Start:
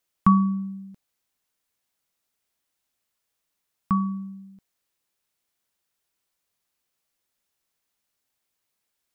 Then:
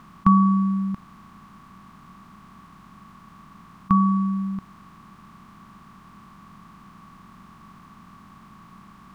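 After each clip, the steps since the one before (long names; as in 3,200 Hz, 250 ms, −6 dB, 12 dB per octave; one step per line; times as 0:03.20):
compressor on every frequency bin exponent 0.4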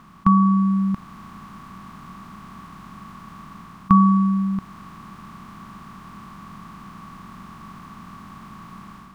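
automatic gain control gain up to 7 dB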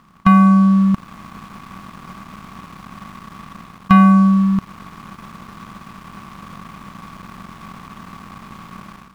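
leveller curve on the samples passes 2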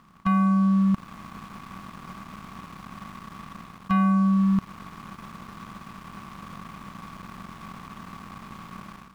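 brickwall limiter −11.5 dBFS, peak gain reduction 9 dB
level −4.5 dB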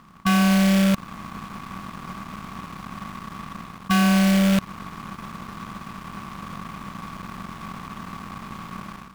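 loose part that buzzes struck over −27 dBFS, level −23 dBFS
in parallel at −8.5 dB: wrap-around overflow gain 18.5 dB
on the sum: level +2.5 dB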